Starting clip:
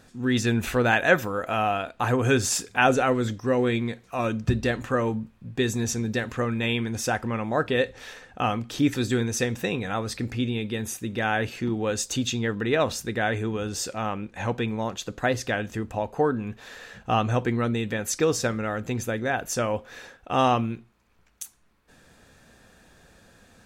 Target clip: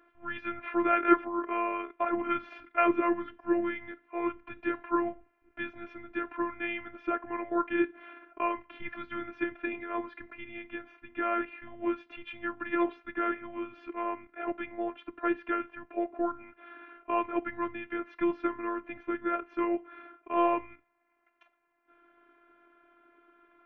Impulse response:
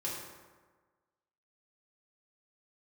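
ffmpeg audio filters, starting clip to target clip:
-af "highpass=f=440:t=q:w=0.5412,highpass=f=440:t=q:w=1.307,lowpass=f=2.6k:t=q:w=0.5176,lowpass=f=2.6k:t=q:w=0.7071,lowpass=f=2.6k:t=q:w=1.932,afreqshift=-200,afftfilt=real='hypot(re,im)*cos(PI*b)':imag='0':win_size=512:overlap=0.75"

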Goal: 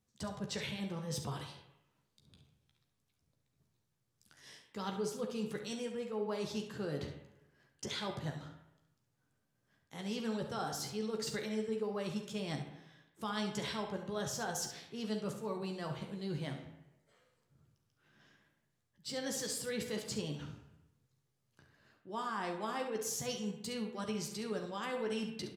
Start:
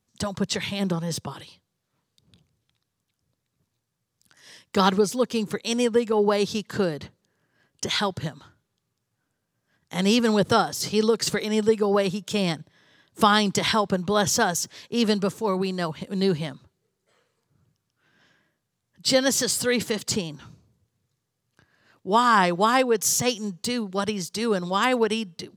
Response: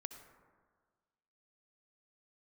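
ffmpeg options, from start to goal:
-filter_complex "[0:a]lowshelf=f=330:g=3,areverse,acompressor=threshold=-31dB:ratio=6,areverse,aecho=1:1:14|69:0.473|0.316[a];[1:a]atrim=start_sample=2205,asetrate=79380,aresample=44100[b];[a][b]afir=irnorm=-1:irlink=0,volume=2.5dB"

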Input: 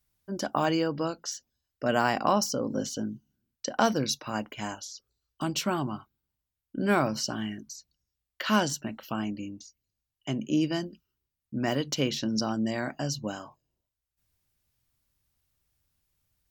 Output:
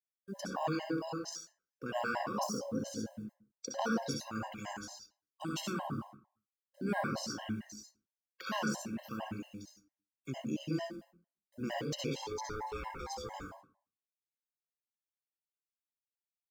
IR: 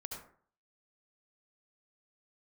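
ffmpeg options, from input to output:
-filter_complex "[0:a]bandreject=f=60:t=h:w=6,bandreject=f=120:t=h:w=6,bandreject=f=180:t=h:w=6,bandreject=f=240:t=h:w=6,bandreject=f=300:t=h:w=6,acompressor=threshold=-30dB:ratio=1.5,asettb=1/sr,asplit=3[a][b][c];[a]atrim=end=12.114[d];[b]atrim=start=12.11:end=13.34,asetpts=PTS-STARTPTS,afade=t=in:d=0.004:c=qsin,afade=t=out:st=1.226:d=0.004:c=qsin,aeval=exprs='val(0)*sin(2*PI*650*n/s)':c=same[e];[c]atrim=start=13.336[f];[d][e]acrossfade=d=0.004:c1=hsin:c2=qsin[g];[g][f]acrossfade=d=0.004:c1=qsin:c2=hsin,acrusher=bits=9:mix=0:aa=0.000001[h];[1:a]atrim=start_sample=2205,asetrate=48510,aresample=44100[i];[h][i]afir=irnorm=-1:irlink=0,afftfilt=real='re*gt(sin(2*PI*4.4*pts/sr)*(1-2*mod(floor(b*sr/1024/540),2)),0)':imag='im*gt(sin(2*PI*4.4*pts/sr)*(1-2*mod(floor(b*sr/1024/540),2)),0)':win_size=1024:overlap=0.75"

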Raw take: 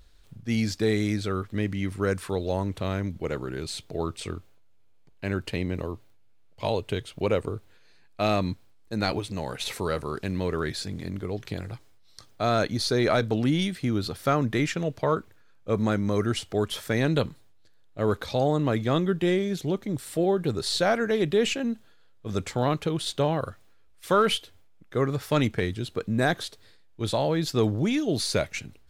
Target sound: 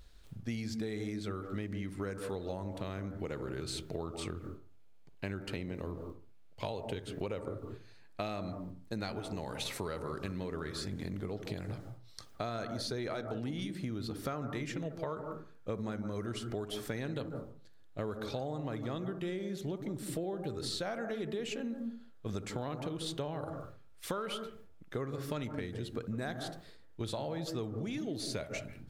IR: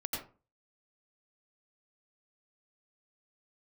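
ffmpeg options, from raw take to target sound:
-filter_complex "[0:a]asplit=2[a][b];[b]lowpass=f=1.6k:w=0.5412,lowpass=f=1.6k:w=1.3066[c];[1:a]atrim=start_sample=2205,adelay=60[d];[c][d]afir=irnorm=-1:irlink=0,volume=-10dB[e];[a][e]amix=inputs=2:normalize=0,acompressor=threshold=-33dB:ratio=10,volume=-1.5dB"

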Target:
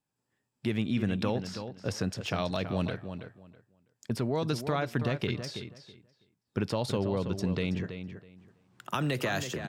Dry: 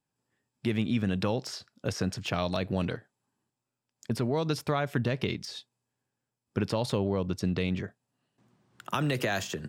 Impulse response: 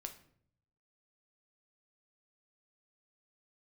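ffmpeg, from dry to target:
-filter_complex "[0:a]asettb=1/sr,asplit=3[a][b][c];[a]atrim=end=1.324[d];[b]atrim=start=1.32:end=1.9,asetpts=PTS-STARTPTS,afade=t=in:d=0.004:c=qsin,afade=t=out:st=0.576:d=0.004:c=qsin,highshelf=f=5.8k:g=-8.5[e];[c]atrim=start=1.896[f];[d][e]acrossfade=d=0.004:c1=hsin:c2=qsin[g];[g][f]acrossfade=d=0.004:c1=qsin:c2=hsin,asplit=2[h][i];[i]adelay=326,lowpass=f=3.8k:p=1,volume=-9dB,asplit=2[j][k];[k]adelay=326,lowpass=f=3.8k:p=1,volume=0.2,asplit=2[l][m];[m]adelay=326,lowpass=f=3.8k:p=1,volume=0.2[n];[h][j][l][n]amix=inputs=4:normalize=0,volume=-1.5dB"

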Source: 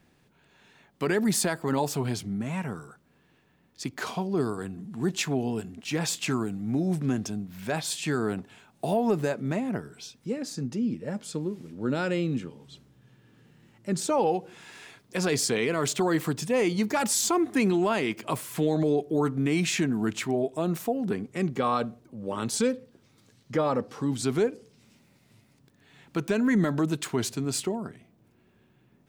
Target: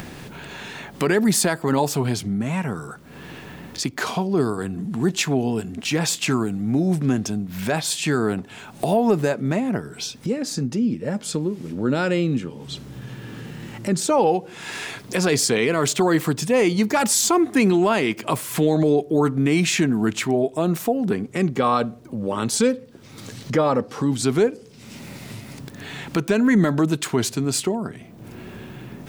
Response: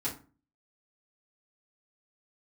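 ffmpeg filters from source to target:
-af "acompressor=mode=upward:threshold=-27dB:ratio=2.5,volume=6.5dB"

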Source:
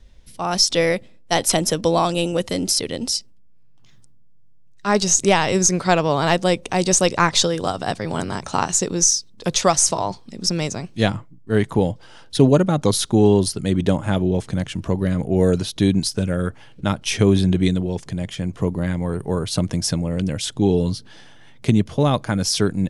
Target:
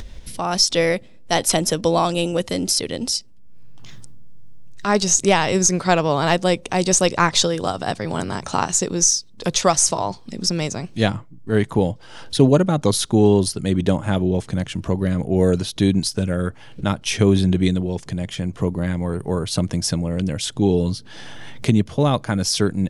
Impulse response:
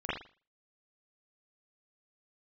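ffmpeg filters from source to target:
-af "acompressor=mode=upward:threshold=-22dB:ratio=2.5"

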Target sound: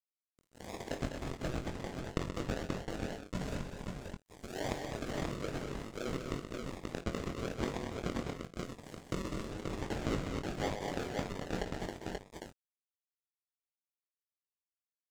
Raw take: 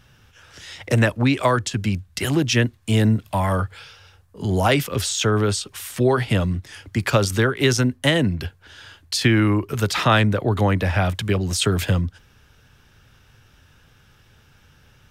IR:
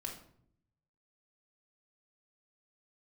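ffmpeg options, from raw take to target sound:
-filter_complex "[0:a]highpass=840,equalizer=f=2.9k:t=o:w=0.22:g=2.5,acompressor=threshold=-36dB:ratio=5,aresample=16000,acrusher=samples=16:mix=1:aa=0.000001:lfo=1:lforange=9.6:lforate=1,aresample=44100,aeval=exprs='sgn(val(0))*max(abs(val(0))-0.00891,0)':c=same,asplit=2[a][b];[b]adelay=22,volume=-7.5dB[c];[a][c]amix=inputs=2:normalize=0,aecho=1:1:49|55|128|202|231|532:0.158|0.15|0.376|0.422|0.376|0.668,adynamicequalizer=threshold=0.00112:dfrequency=4300:dqfactor=0.7:tfrequency=4300:tqfactor=0.7:attack=5:release=100:ratio=0.375:range=2.5:mode=cutabove:tftype=highshelf,volume=3dB"

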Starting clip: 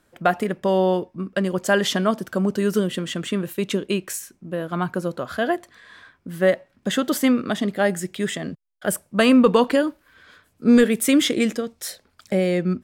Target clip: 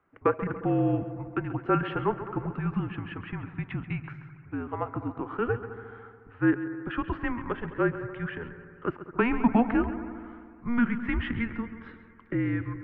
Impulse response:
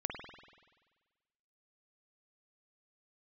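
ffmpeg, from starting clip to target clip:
-filter_complex "[0:a]highpass=260,asplit=2[a][b];[1:a]atrim=start_sample=2205,asetrate=29988,aresample=44100,adelay=135[c];[b][c]afir=irnorm=-1:irlink=0,volume=-14dB[d];[a][d]amix=inputs=2:normalize=0,highpass=f=340:t=q:w=0.5412,highpass=f=340:t=q:w=1.307,lowpass=f=2.5k:t=q:w=0.5176,lowpass=f=2.5k:t=q:w=0.7071,lowpass=f=2.5k:t=q:w=1.932,afreqshift=-240,volume=-4.5dB"

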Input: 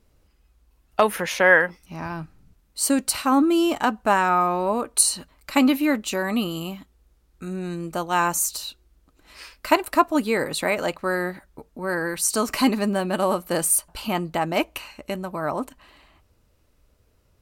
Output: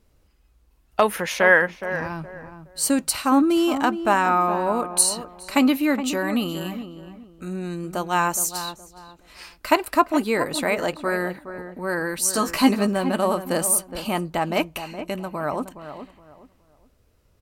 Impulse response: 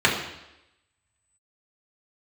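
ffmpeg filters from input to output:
-filter_complex "[0:a]asettb=1/sr,asplit=3[a][b][c];[a]atrim=end=12.204[d];[b]atrim=start=12.2:end=12.87,asetpts=PTS-STARTPTS,afade=t=in:d=0.004:c=qsin,afade=t=out:st=0.666:d=0.004:c=qsin,asplit=2[e][f];[f]adelay=15,volume=-5.5dB[g];[e][g]amix=inputs=2:normalize=0,atrim=end_sample=29547[h];[c]atrim=start=12.866[i];[d][h]acrossfade=d=0.004:c1=hsin:c2=qsin[j];[j][i]acrossfade=d=0.004:c1=qsin:c2=hsin,asplit=2[k][l];[l]adelay=418,lowpass=f=1.4k:p=1,volume=-10dB,asplit=2[m][n];[n]adelay=418,lowpass=f=1.4k:p=1,volume=0.29,asplit=2[o][p];[p]adelay=418,lowpass=f=1.4k:p=1,volume=0.29[q];[k][m][o][q]amix=inputs=4:normalize=0"

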